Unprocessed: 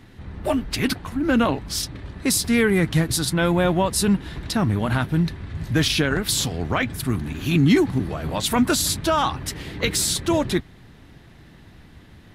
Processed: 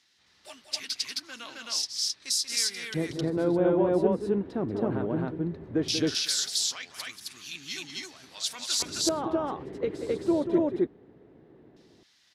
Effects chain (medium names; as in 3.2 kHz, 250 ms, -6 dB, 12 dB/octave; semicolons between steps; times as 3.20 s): LFO band-pass square 0.17 Hz 410–5400 Hz; loudspeakers at several distances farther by 64 m -9 dB, 91 m 0 dB